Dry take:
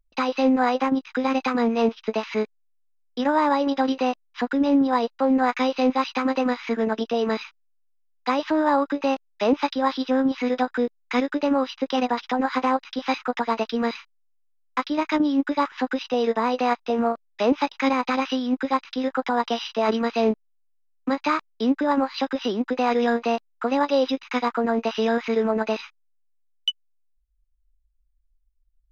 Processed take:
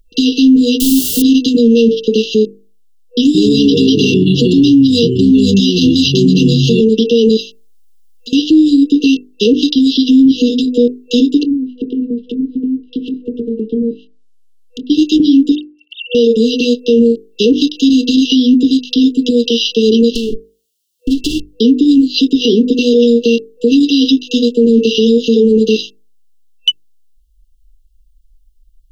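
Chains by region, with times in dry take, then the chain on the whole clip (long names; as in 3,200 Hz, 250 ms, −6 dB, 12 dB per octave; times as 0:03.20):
0:00.80–0:01.22: hard clipping −22 dBFS + phaser with its sweep stopped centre 380 Hz, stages 6 + bit-depth reduction 6 bits, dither triangular
0:03.23–0:06.81: delay with pitch and tempo change per echo 115 ms, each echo −6 semitones, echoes 3, each echo −6 dB + high-shelf EQ 2,400 Hz +8 dB
0:07.40–0:08.33: downward compressor 3 to 1, threshold −46 dBFS + high-shelf EQ 3,900 Hz +6 dB + comb filter 5.2 ms, depth 73%
0:11.39–0:14.90: treble cut that deepens with the level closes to 360 Hz, closed at −21.5 dBFS + double-tracking delay 24 ms −11 dB + downward compressor 5 to 1, threshold −30 dBFS
0:15.55–0:16.15: three sine waves on the formant tracks + Chebyshev high-pass filter 1,400 Hz, order 5 + downward compressor 2 to 1, threshold −36 dBFS
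0:20.15–0:21.48: lower of the sound and its delayed copy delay 3 ms + downward compressor, threshold −26 dBFS + one half of a high-frequency compander encoder only
whole clip: brick-wall band-stop 490–2,700 Hz; mains-hum notches 50/100/150/200/250/300/350/400/450 Hz; boost into a limiter +20 dB; level −1 dB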